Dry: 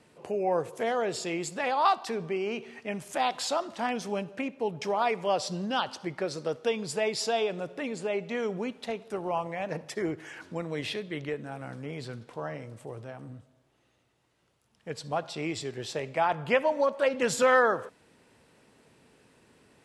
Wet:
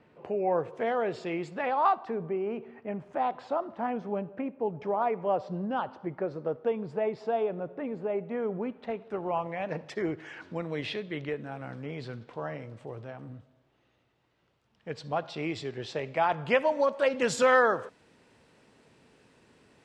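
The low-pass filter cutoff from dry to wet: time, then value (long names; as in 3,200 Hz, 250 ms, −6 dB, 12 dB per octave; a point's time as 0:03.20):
0:01.50 2,400 Hz
0:02.19 1,200 Hz
0:08.46 1,200 Hz
0:09.07 2,200 Hz
0:09.88 4,100 Hz
0:15.97 4,100 Hz
0:16.66 7,600 Hz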